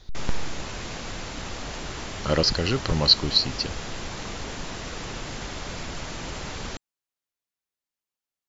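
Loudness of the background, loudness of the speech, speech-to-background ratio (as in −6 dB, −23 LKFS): −35.0 LKFS, −22.0 LKFS, 13.0 dB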